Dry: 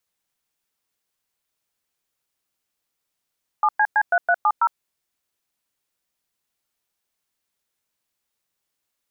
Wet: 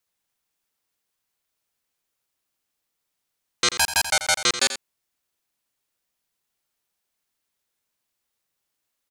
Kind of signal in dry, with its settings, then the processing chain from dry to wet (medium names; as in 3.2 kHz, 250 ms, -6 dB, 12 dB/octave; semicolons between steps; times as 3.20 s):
DTMF "7CC3370", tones 58 ms, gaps 106 ms, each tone -17 dBFS
self-modulated delay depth 0.91 ms; on a send: delay 86 ms -11.5 dB